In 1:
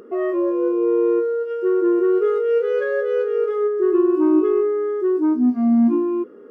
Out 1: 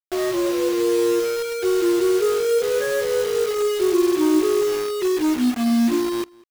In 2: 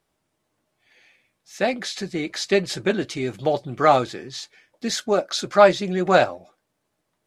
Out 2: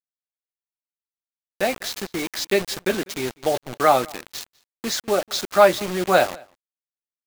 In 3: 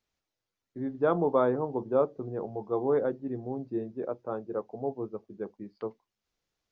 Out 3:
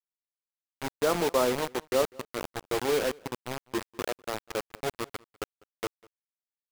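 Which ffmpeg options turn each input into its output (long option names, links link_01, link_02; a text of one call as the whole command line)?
ffmpeg -i in.wav -filter_complex "[0:a]highpass=frequency=220:poles=1,acrusher=bits=4:mix=0:aa=0.000001,asplit=2[link_01][link_02];[link_02]adelay=198.3,volume=-25dB,highshelf=frequency=4000:gain=-4.46[link_03];[link_01][link_03]amix=inputs=2:normalize=0" out.wav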